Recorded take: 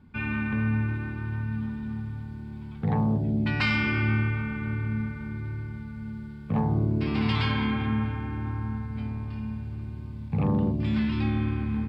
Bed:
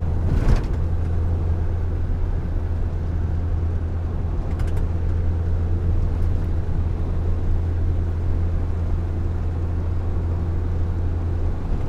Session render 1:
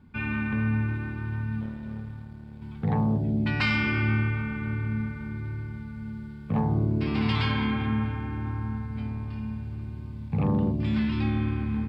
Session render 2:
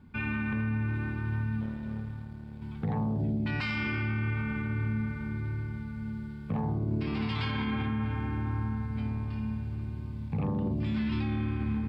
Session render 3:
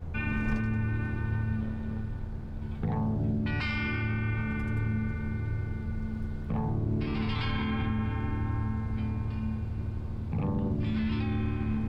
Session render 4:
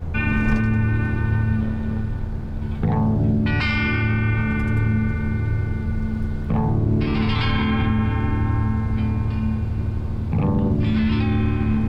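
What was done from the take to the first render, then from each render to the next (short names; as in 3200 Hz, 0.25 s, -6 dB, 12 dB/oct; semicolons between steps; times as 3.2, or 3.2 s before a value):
1.61–2.62 power-law curve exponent 1.4
limiter -23 dBFS, peak gain reduction 9.5 dB
add bed -15.5 dB
gain +10 dB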